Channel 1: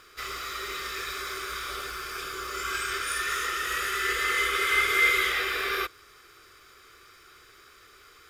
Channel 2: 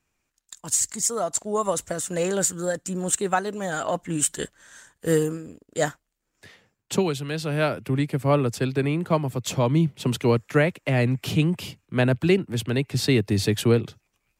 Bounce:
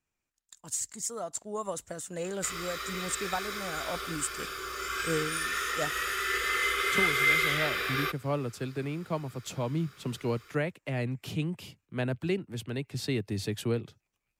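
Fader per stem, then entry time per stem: -2.5 dB, -10.5 dB; 2.25 s, 0.00 s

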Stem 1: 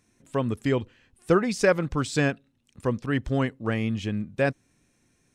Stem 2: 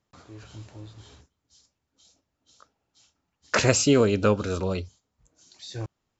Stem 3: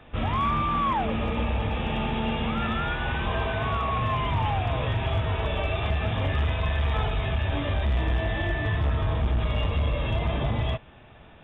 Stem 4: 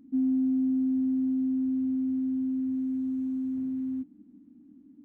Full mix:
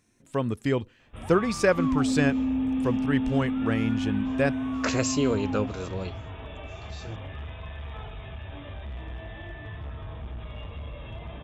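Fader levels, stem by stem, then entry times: -1.0 dB, -6.5 dB, -13.0 dB, 0.0 dB; 0.00 s, 1.30 s, 1.00 s, 1.65 s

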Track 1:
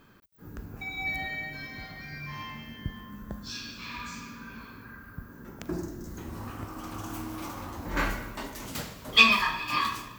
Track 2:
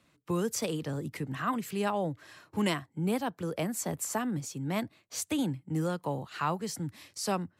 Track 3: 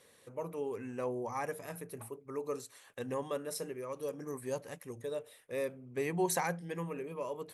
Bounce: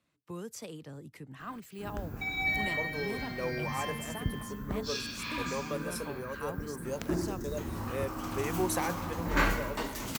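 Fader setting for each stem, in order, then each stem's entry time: +2.0 dB, -11.0 dB, 0.0 dB; 1.40 s, 0.00 s, 2.40 s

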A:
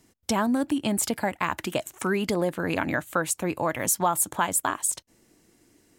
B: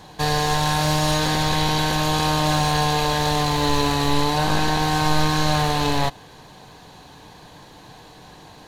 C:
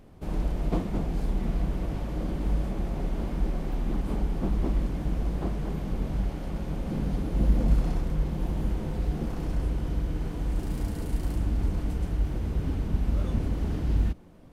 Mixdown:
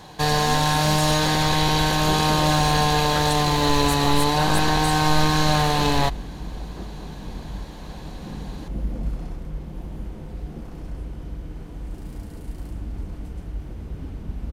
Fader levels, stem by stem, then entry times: -9.5 dB, +0.5 dB, -5.0 dB; 0.00 s, 0.00 s, 1.35 s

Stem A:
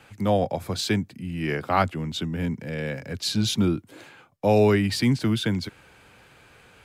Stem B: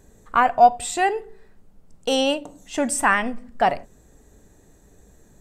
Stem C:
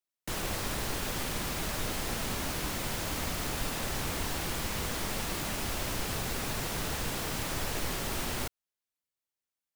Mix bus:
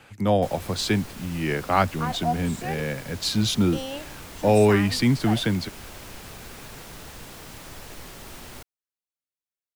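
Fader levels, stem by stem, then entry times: +1.0 dB, -13.5 dB, -7.5 dB; 0.00 s, 1.65 s, 0.15 s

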